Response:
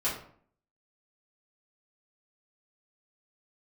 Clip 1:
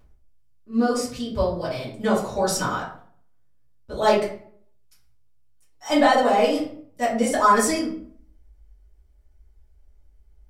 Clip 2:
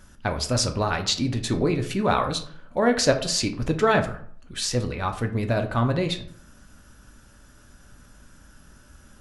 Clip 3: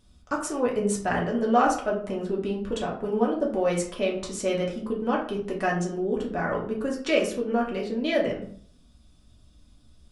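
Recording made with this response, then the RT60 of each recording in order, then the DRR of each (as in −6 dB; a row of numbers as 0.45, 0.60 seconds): 1; 0.55, 0.55, 0.55 seconds; −10.0, 4.5, −3.0 decibels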